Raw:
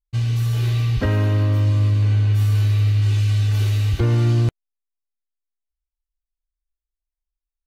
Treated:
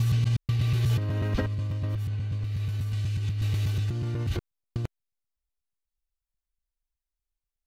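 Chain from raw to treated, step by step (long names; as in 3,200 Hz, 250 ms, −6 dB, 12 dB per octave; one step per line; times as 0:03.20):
slices reordered back to front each 122 ms, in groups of 4
compressor whose output falls as the input rises −20 dBFS, ratio −0.5
level −5.5 dB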